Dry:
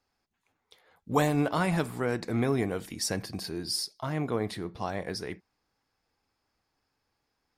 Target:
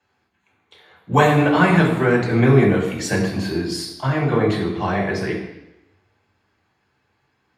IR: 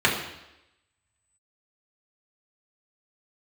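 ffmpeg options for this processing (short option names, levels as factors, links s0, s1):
-filter_complex "[1:a]atrim=start_sample=2205,asetrate=41895,aresample=44100[s0];[0:a][s0]afir=irnorm=-1:irlink=0,volume=0.531"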